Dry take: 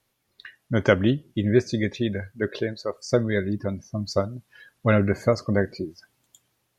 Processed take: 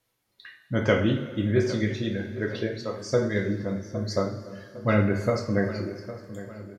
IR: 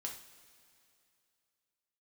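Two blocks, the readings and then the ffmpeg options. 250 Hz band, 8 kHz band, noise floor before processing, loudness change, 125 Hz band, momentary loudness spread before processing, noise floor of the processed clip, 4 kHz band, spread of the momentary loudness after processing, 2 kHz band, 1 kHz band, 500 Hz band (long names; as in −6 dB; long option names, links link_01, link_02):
−1.5 dB, can't be measured, −73 dBFS, −2.0 dB, −1.5 dB, 10 LU, −75 dBFS, −1.5 dB, 16 LU, −2.0 dB, −1.5 dB, −2.5 dB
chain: -filter_complex "[0:a]asplit=2[link_01][link_02];[link_02]adelay=808,lowpass=frequency=2200:poles=1,volume=-14dB,asplit=2[link_03][link_04];[link_04]adelay=808,lowpass=frequency=2200:poles=1,volume=0.48,asplit=2[link_05][link_06];[link_06]adelay=808,lowpass=frequency=2200:poles=1,volume=0.48,asplit=2[link_07][link_08];[link_08]adelay=808,lowpass=frequency=2200:poles=1,volume=0.48,asplit=2[link_09][link_10];[link_10]adelay=808,lowpass=frequency=2200:poles=1,volume=0.48[link_11];[link_01][link_03][link_05][link_07][link_09][link_11]amix=inputs=6:normalize=0[link_12];[1:a]atrim=start_sample=2205[link_13];[link_12][link_13]afir=irnorm=-1:irlink=0"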